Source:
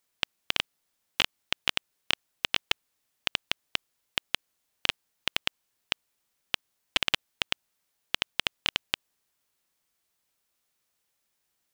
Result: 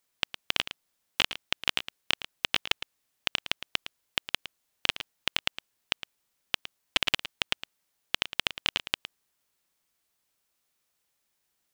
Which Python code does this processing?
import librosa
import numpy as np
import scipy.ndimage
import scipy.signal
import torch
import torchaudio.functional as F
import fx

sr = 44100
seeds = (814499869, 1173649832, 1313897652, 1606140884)

y = x + 10.0 ** (-12.5 / 20.0) * np.pad(x, (int(111 * sr / 1000.0), 0))[:len(x)]